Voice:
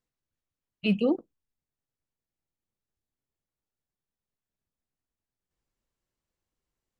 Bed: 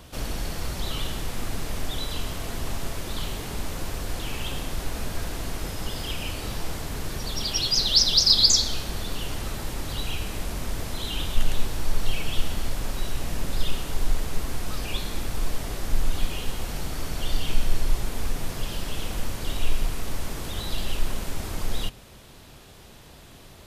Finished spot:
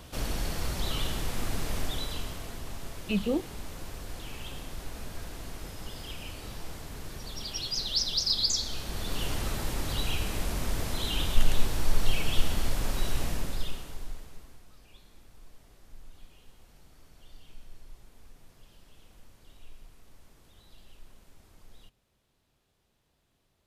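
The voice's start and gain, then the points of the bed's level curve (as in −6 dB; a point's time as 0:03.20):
2.25 s, −4.0 dB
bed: 0:01.79 −1.5 dB
0:02.64 −9.5 dB
0:08.54 −9.5 dB
0:09.23 −0.5 dB
0:13.23 −0.5 dB
0:14.71 −26 dB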